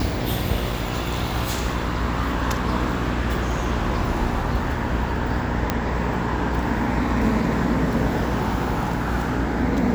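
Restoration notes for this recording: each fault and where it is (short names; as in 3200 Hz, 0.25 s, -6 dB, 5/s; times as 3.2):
buzz 60 Hz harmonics 17 -27 dBFS
5.7 pop -6 dBFS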